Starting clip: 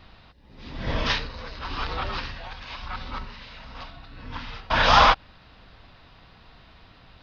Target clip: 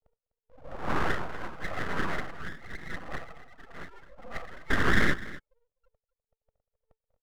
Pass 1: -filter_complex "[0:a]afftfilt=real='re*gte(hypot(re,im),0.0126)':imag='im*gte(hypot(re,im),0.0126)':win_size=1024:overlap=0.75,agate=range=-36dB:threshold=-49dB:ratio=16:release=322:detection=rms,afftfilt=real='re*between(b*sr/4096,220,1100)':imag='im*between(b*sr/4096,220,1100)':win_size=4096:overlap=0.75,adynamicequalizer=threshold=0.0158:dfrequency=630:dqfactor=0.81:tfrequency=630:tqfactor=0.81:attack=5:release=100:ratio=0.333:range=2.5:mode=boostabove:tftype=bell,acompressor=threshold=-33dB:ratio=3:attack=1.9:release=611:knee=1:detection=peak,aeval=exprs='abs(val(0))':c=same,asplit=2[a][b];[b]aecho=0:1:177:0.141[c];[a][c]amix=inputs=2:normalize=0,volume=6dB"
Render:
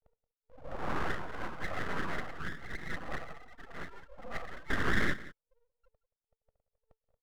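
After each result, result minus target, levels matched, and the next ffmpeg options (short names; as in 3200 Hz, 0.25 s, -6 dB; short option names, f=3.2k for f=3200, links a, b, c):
compressor: peak gain reduction +6 dB; echo 74 ms early
-filter_complex "[0:a]afftfilt=real='re*gte(hypot(re,im),0.0126)':imag='im*gte(hypot(re,im),0.0126)':win_size=1024:overlap=0.75,agate=range=-36dB:threshold=-49dB:ratio=16:release=322:detection=rms,afftfilt=real='re*between(b*sr/4096,220,1100)':imag='im*between(b*sr/4096,220,1100)':win_size=4096:overlap=0.75,adynamicequalizer=threshold=0.0158:dfrequency=630:dqfactor=0.81:tfrequency=630:tqfactor=0.81:attack=5:release=100:ratio=0.333:range=2.5:mode=boostabove:tftype=bell,acompressor=threshold=-24dB:ratio=3:attack=1.9:release=611:knee=1:detection=peak,aeval=exprs='abs(val(0))':c=same,asplit=2[a][b];[b]aecho=0:1:177:0.141[c];[a][c]amix=inputs=2:normalize=0,volume=6dB"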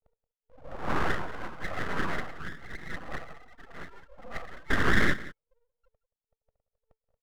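echo 74 ms early
-filter_complex "[0:a]afftfilt=real='re*gte(hypot(re,im),0.0126)':imag='im*gte(hypot(re,im),0.0126)':win_size=1024:overlap=0.75,agate=range=-36dB:threshold=-49dB:ratio=16:release=322:detection=rms,afftfilt=real='re*between(b*sr/4096,220,1100)':imag='im*between(b*sr/4096,220,1100)':win_size=4096:overlap=0.75,adynamicequalizer=threshold=0.0158:dfrequency=630:dqfactor=0.81:tfrequency=630:tqfactor=0.81:attack=5:release=100:ratio=0.333:range=2.5:mode=boostabove:tftype=bell,acompressor=threshold=-24dB:ratio=3:attack=1.9:release=611:knee=1:detection=peak,aeval=exprs='abs(val(0))':c=same,asplit=2[a][b];[b]aecho=0:1:251:0.141[c];[a][c]amix=inputs=2:normalize=0,volume=6dB"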